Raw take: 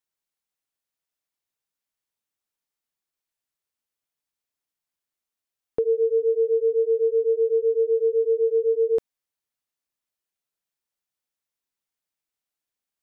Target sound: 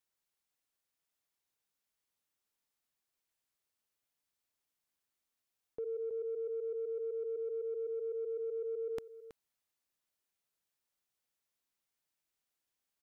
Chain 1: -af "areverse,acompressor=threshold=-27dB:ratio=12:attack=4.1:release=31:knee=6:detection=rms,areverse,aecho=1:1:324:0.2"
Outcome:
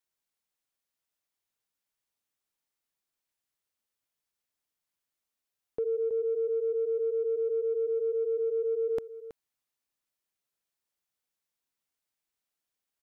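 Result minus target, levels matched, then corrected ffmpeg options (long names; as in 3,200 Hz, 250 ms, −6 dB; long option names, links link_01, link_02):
downward compressor: peak gain reduction −9 dB
-af "areverse,acompressor=threshold=-37dB:ratio=12:attack=4.1:release=31:knee=6:detection=rms,areverse,aecho=1:1:324:0.2"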